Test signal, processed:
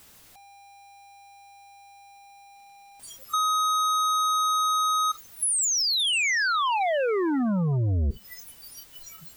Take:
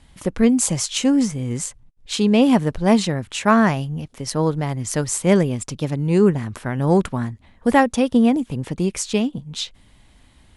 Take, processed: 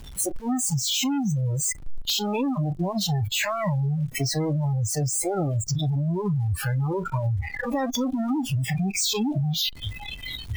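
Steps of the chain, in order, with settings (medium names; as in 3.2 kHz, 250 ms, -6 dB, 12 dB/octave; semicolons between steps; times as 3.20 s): one-bit comparator; spectral noise reduction 30 dB; bass shelf 210 Hz +10.5 dB; compression 16:1, threshold -23 dBFS; integer overflow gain 17 dB; trim +1 dB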